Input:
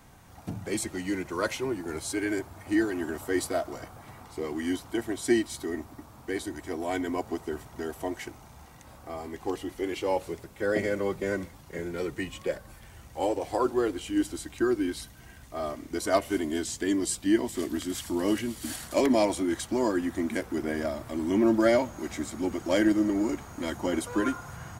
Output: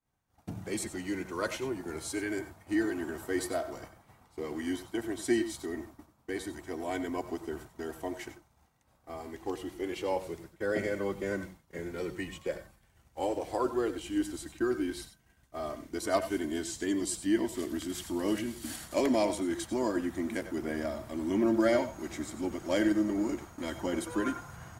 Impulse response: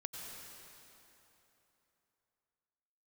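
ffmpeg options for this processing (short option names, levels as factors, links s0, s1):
-filter_complex "[0:a]agate=range=0.0224:threshold=0.0112:ratio=3:detection=peak[s0];[1:a]atrim=start_sample=2205,atrim=end_sample=4410[s1];[s0][s1]afir=irnorm=-1:irlink=0"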